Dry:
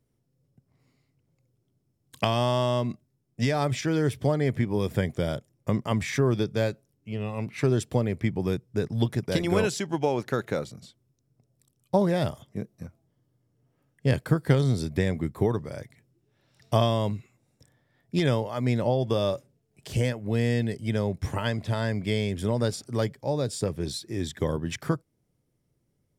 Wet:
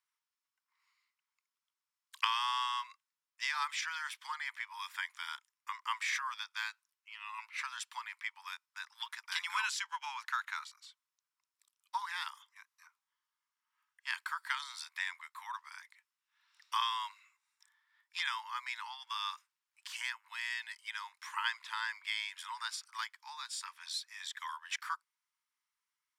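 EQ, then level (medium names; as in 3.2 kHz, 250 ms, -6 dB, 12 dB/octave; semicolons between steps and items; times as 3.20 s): steep high-pass 930 Hz 96 dB/octave; treble shelf 6.7 kHz -10 dB; 0.0 dB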